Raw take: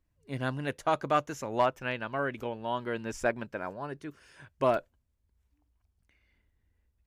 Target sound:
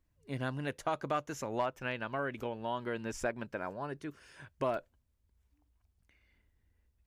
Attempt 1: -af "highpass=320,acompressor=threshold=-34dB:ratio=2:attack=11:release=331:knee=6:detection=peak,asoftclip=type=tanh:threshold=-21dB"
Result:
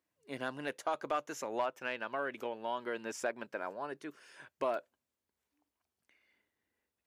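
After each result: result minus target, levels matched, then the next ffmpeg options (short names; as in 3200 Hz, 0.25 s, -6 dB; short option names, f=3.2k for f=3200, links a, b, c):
soft clip: distortion +18 dB; 250 Hz band -3.5 dB
-af "highpass=320,acompressor=threshold=-34dB:ratio=2:attack=11:release=331:knee=6:detection=peak,asoftclip=type=tanh:threshold=-12.5dB"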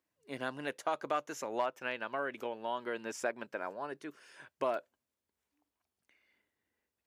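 250 Hz band -3.5 dB
-af "acompressor=threshold=-34dB:ratio=2:attack=11:release=331:knee=6:detection=peak,asoftclip=type=tanh:threshold=-12.5dB"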